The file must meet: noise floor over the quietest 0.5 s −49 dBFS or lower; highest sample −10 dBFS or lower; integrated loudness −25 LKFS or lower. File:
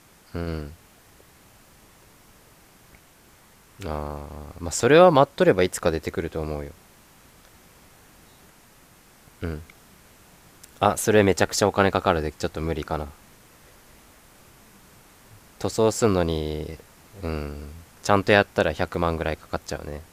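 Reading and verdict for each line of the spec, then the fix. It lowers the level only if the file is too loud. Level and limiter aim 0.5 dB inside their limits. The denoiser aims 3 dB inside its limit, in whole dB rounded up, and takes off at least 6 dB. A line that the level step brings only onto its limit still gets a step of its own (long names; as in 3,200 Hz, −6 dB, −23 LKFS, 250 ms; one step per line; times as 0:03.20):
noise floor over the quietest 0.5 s −54 dBFS: in spec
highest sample −2.0 dBFS: out of spec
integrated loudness −23.0 LKFS: out of spec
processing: level −2.5 dB
brickwall limiter −10.5 dBFS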